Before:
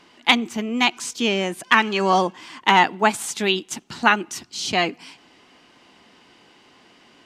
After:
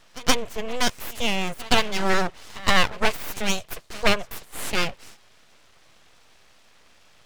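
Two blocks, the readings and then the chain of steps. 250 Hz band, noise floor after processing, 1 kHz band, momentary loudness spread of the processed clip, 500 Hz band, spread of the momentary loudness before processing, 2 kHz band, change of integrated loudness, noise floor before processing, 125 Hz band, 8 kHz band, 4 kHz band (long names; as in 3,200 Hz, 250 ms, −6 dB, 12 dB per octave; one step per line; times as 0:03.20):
−5.5 dB, −55 dBFS, −7.5 dB, 9 LU, −3.0 dB, 9 LU, −5.0 dB, −4.5 dB, −54 dBFS, −0.5 dB, −1.0 dB, −2.5 dB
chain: echo ahead of the sound 123 ms −20 dB
tape wow and flutter 28 cents
full-wave rectification
level −1 dB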